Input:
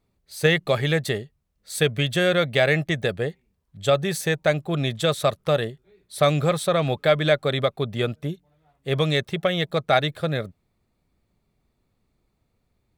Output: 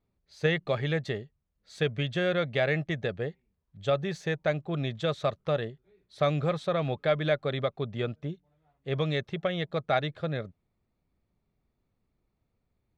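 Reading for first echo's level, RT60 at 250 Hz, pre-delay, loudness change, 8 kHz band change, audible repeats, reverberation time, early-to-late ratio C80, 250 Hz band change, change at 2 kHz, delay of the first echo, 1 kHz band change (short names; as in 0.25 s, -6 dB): none, none, none, -7.0 dB, under -15 dB, none, none, none, -6.5 dB, -8.0 dB, none, -7.0 dB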